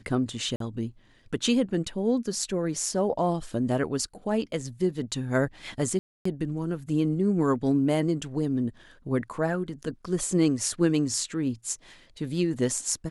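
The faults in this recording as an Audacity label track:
0.560000	0.600000	drop-out 43 ms
5.990000	6.250000	drop-out 264 ms

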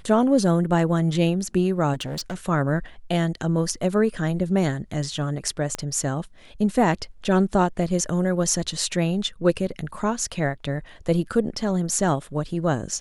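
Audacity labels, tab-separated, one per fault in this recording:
1.930000	2.350000	clipping −26 dBFS
5.750000	5.750000	click −13 dBFS

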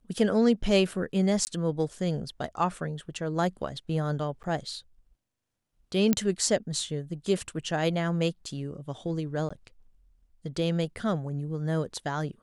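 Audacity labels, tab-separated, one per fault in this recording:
1.450000	1.470000	drop-out 19 ms
4.430000	4.440000	drop-out 9.4 ms
6.130000	6.130000	click −9 dBFS
9.490000	9.510000	drop-out 15 ms

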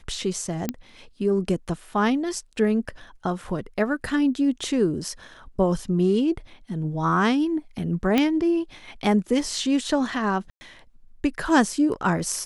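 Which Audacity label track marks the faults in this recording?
0.690000	0.690000	click −11 dBFS
8.180000	8.180000	click −8 dBFS
10.500000	10.610000	drop-out 110 ms

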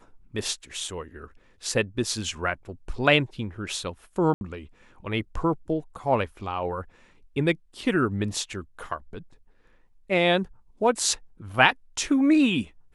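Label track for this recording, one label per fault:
4.340000	4.410000	drop-out 71 ms

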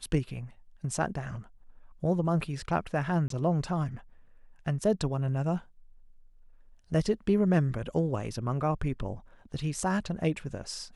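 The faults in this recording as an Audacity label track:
3.280000	3.300000	drop-out 23 ms

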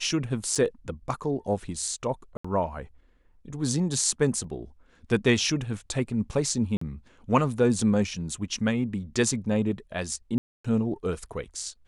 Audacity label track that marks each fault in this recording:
0.550000	0.560000	drop-out 5.5 ms
2.370000	2.440000	drop-out 75 ms
4.440000	4.440000	drop-out 2.4 ms
6.770000	6.810000	drop-out 44 ms
10.380000	10.640000	drop-out 265 ms

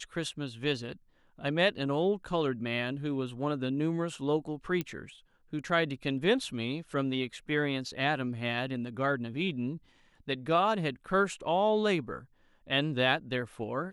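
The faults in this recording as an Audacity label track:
4.810000	4.810000	click −19 dBFS

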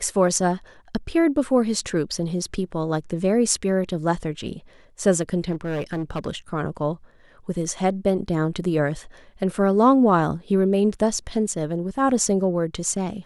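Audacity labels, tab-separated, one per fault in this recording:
5.510000	6.280000	clipping −22.5 dBFS

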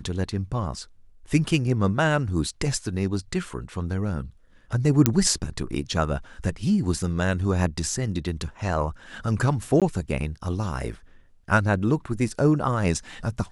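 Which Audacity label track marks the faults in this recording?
5.060000	5.060000	click −2 dBFS
9.800000	9.820000	drop-out 17 ms

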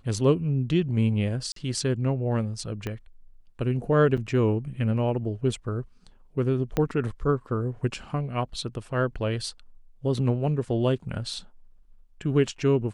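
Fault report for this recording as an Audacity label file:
1.520000	1.560000	drop-out 43 ms
2.870000	2.870000	click −18 dBFS
4.170000	4.180000	drop-out 6.6 ms
6.770000	6.770000	click −12 dBFS

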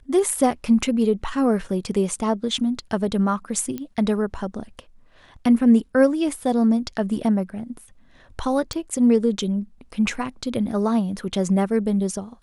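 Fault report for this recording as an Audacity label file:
3.780000	3.780000	click −17 dBFS
8.730000	8.730000	click −15 dBFS

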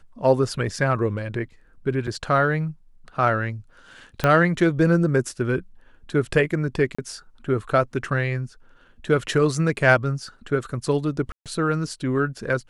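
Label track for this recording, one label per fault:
2.070000	2.080000	drop-out 5.4 ms
4.240000	4.240000	click −7 dBFS
6.950000	6.990000	drop-out 35 ms
11.320000	11.460000	drop-out 137 ms

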